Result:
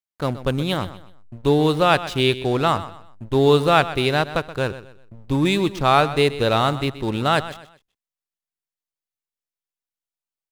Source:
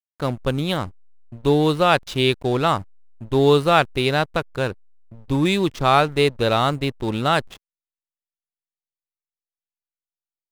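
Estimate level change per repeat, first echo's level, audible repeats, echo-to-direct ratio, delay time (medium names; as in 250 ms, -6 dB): -10.0 dB, -14.5 dB, 3, -14.0 dB, 126 ms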